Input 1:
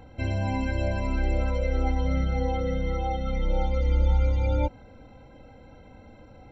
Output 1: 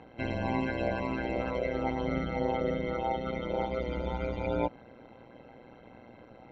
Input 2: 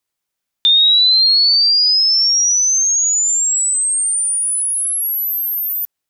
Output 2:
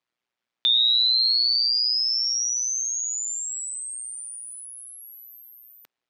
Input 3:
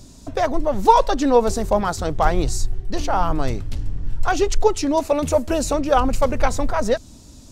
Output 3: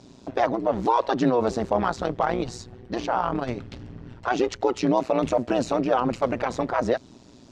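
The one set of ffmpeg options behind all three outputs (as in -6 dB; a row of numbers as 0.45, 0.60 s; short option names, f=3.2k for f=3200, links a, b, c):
-af "alimiter=limit=-12.5dB:level=0:latency=1:release=34,highpass=160,lowpass=3.6k,tremolo=f=120:d=0.857,volume=3.5dB"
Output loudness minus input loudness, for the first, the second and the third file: -5.0, -9.0, -4.0 LU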